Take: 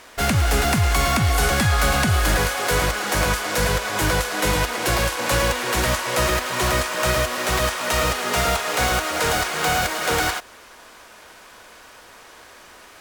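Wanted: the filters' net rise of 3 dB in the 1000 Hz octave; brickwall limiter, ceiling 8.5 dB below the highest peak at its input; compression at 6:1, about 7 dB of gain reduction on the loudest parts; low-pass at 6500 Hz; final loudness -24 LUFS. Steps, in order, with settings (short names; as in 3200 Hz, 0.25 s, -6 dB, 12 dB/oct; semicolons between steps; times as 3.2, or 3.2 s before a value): LPF 6500 Hz; bell 1000 Hz +4 dB; compressor 6:1, threshold -22 dBFS; gain +5.5 dB; limiter -15.5 dBFS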